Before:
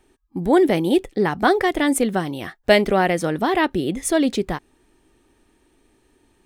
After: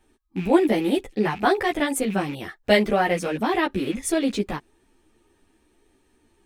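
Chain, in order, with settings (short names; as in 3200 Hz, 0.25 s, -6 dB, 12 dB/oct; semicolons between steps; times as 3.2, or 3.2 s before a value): rattling part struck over -32 dBFS, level -25 dBFS; ensemble effect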